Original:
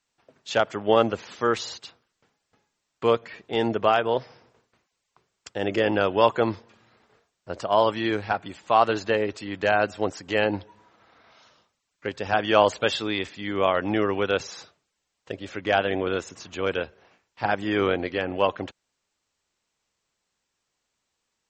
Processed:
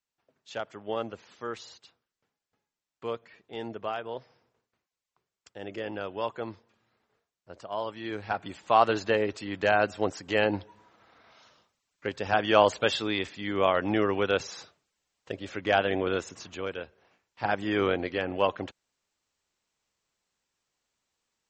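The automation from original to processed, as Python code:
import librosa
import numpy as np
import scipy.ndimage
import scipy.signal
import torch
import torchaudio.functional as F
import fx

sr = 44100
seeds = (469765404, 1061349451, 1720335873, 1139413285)

y = fx.gain(x, sr, db=fx.line((7.96, -13.0), (8.46, -2.0), (16.46, -2.0), (16.73, -10.0), (17.55, -3.0)))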